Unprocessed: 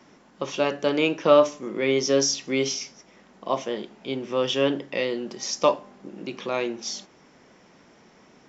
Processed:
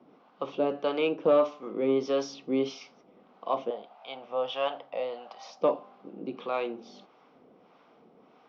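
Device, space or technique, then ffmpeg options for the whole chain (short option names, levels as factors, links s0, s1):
guitar amplifier with harmonic tremolo: -filter_complex "[0:a]asettb=1/sr,asplit=3[s0][s1][s2];[s0]atrim=end=3.704[s3];[s1]atrim=start=3.7:end=5.61,asetpts=PTS-STARTPTS,afade=t=in:d=0.004:c=qsin,afade=t=out:st=1.906:d=0.004:c=qsin,lowshelf=f=500:t=q:w=3:g=-11[s4];[s2]atrim=start=5.606[s5];[s3][s4]acrossfade=d=0.004:c1=hsin:c2=qsin[s6];[s6][s5]acrossfade=d=0.004:c1=qsin:c2=hsin,acrossover=split=610[s7][s8];[s7]aeval=exprs='val(0)*(1-0.7/2+0.7/2*cos(2*PI*1.6*n/s))':c=same[s9];[s8]aeval=exprs='val(0)*(1-0.7/2-0.7/2*cos(2*PI*1.6*n/s))':c=same[s10];[s9][s10]amix=inputs=2:normalize=0,asoftclip=type=tanh:threshold=0.188,highpass=88,equalizer=f=100:t=q:w=4:g=-7,equalizer=f=270:t=q:w=4:g=5,equalizer=f=470:t=q:w=4:g=8,equalizer=f=740:t=q:w=4:g=8,equalizer=f=1200:t=q:w=4:g=7,equalizer=f=1800:t=q:w=4:g=-9,lowpass=f=3900:w=0.5412,lowpass=f=3900:w=1.3066,volume=0.596"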